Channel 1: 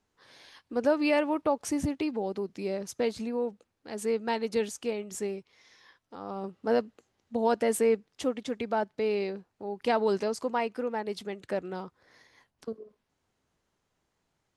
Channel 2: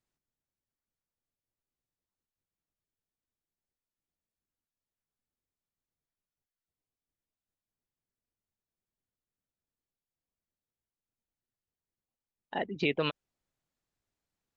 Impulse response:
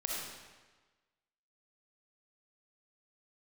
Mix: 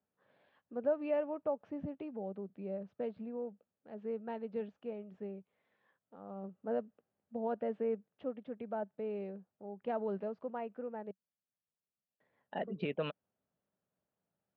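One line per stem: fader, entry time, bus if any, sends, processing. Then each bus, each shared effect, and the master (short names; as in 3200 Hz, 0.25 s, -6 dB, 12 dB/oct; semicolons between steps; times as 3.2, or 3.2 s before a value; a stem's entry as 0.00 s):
-10.5 dB, 0.00 s, muted 11.11–12.2, no send, LPF 1400 Hz 6 dB/oct
-6.0 dB, 0.00 s, no send, de-esser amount 100%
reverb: off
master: speaker cabinet 110–2900 Hz, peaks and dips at 190 Hz +6 dB, 330 Hz -5 dB, 600 Hz +6 dB, 1000 Hz -4 dB, 2100 Hz -6 dB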